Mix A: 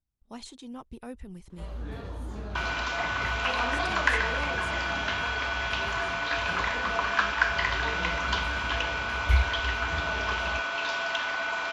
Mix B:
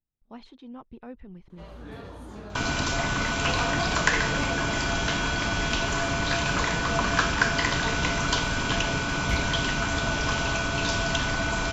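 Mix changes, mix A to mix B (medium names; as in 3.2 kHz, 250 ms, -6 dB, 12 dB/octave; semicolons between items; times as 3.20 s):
speech: add distance through air 300 m; second sound: remove band-pass 740–3200 Hz; master: add peaking EQ 62 Hz -10 dB 1 oct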